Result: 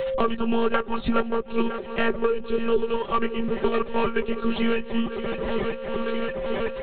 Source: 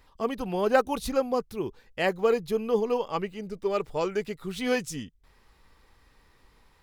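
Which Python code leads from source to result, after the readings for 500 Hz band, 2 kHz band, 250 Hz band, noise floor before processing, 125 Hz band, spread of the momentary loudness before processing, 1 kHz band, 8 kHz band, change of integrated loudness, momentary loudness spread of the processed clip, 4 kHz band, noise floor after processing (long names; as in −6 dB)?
+2.5 dB, +4.0 dB, +7.0 dB, −62 dBFS, +2.5 dB, 11 LU, +3.5 dB, below −30 dB, +2.5 dB, 4 LU, +4.5 dB, −35 dBFS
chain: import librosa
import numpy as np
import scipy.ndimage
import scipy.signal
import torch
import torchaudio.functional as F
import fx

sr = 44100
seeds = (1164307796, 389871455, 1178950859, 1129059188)

p1 = fx.self_delay(x, sr, depth_ms=0.17)
p2 = fx.rider(p1, sr, range_db=4, speed_s=0.5)
p3 = p1 + (p2 * 10.0 ** (-1.5 / 20.0))
p4 = fx.echo_swing(p3, sr, ms=953, ratio=1.5, feedback_pct=63, wet_db=-17.5)
p5 = p4 * (1.0 - 0.36 / 2.0 + 0.36 / 2.0 * np.cos(2.0 * np.pi * 1.8 * (np.arange(len(p4)) / sr)))
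p6 = p5 + 10.0 ** (-22.0 / 20.0) * np.pad(p5, (int(201 * sr / 1000.0), 0))[:len(p5)]
p7 = np.sign(p6) * np.maximum(np.abs(p6) - 10.0 ** (-49.0 / 20.0), 0.0)
p8 = fx.lpc_monotone(p7, sr, seeds[0], pitch_hz=230.0, order=16)
p9 = p8 + 0.75 * np.pad(p8, (int(5.1 * sr / 1000.0), 0))[:len(p8)]
p10 = p9 + 10.0 ** (-47.0 / 20.0) * np.sin(2.0 * np.pi * 530.0 * np.arange(len(p9)) / sr)
y = fx.band_squash(p10, sr, depth_pct=100)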